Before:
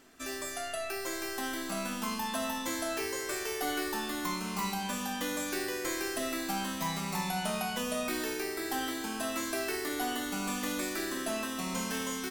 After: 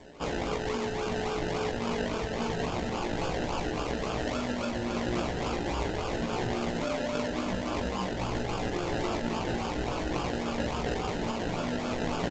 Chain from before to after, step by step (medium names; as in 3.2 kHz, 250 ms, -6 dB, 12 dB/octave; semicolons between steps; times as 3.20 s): resonant low shelf 180 Hz +10 dB, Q 3; in parallel at +2 dB: compressor with a negative ratio -38 dBFS, ratio -0.5; on the sum: ring modulator 430 Hz; decimation with a swept rate 31×, swing 60% 3.6 Hz; early reflections 17 ms -4.5 dB, 42 ms -8.5 dB; G.722 64 kbps 16 kHz